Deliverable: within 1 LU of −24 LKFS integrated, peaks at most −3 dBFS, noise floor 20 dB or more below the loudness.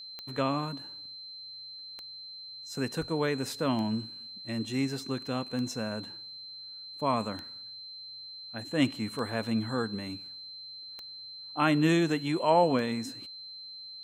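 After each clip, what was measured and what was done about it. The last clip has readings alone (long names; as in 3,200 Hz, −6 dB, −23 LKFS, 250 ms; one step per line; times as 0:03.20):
number of clicks 8; interfering tone 4,100 Hz; level of the tone −42 dBFS; integrated loudness −32.0 LKFS; sample peak −11.5 dBFS; target loudness −24.0 LKFS
→ click removal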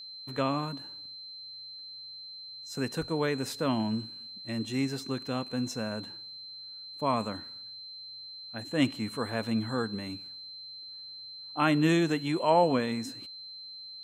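number of clicks 0; interfering tone 4,100 Hz; level of the tone −42 dBFS
→ notch filter 4,100 Hz, Q 30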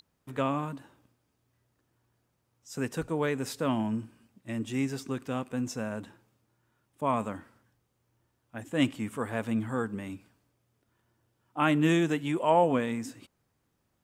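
interfering tone none found; integrated loudness −30.5 LKFS; sample peak −11.5 dBFS; target loudness −24.0 LKFS
→ level +6.5 dB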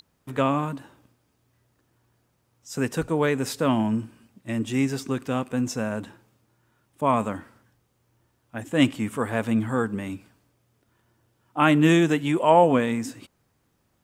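integrated loudness −24.0 LKFS; sample peak −5.0 dBFS; background noise floor −70 dBFS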